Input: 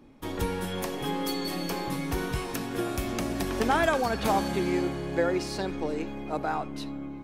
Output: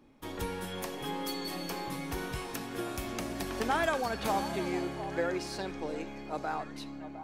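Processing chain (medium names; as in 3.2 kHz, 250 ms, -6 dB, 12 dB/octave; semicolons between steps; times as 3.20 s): bass shelf 470 Hz -4 dB; repeats whose band climbs or falls 708 ms, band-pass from 770 Hz, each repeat 1.4 oct, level -10 dB; trim -4 dB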